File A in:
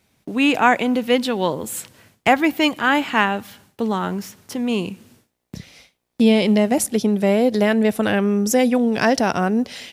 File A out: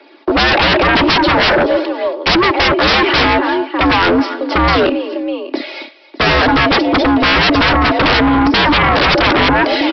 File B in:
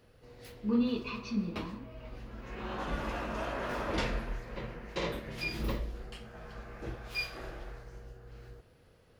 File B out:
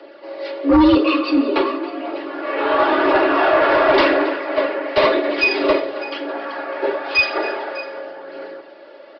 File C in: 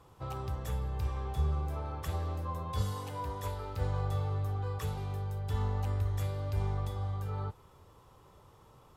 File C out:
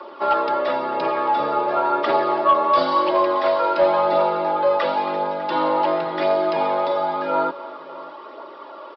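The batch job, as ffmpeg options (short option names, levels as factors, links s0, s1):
-filter_complex "[0:a]acrossover=split=540|1400[s0][s1][s2];[s0]acompressor=threshold=0.112:ratio=4[s3];[s1]acompressor=threshold=0.0355:ratio=4[s4];[s2]acompressor=threshold=0.0224:ratio=4[s5];[s3][s4][s5]amix=inputs=3:normalize=0,highpass=f=250:w=0.5412,highpass=f=250:w=1.3066,highshelf=f=2500:g=-9.5,aecho=1:1:3.7:0.67,aphaser=in_gain=1:out_gain=1:delay=2.5:decay=0.29:speed=0.95:type=triangular,afreqshift=69,aecho=1:1:274|601:0.126|0.119,aresample=11025,aeval=exprs='0.473*sin(PI/2*10*val(0)/0.473)':c=same,aresample=44100,volume=0.841"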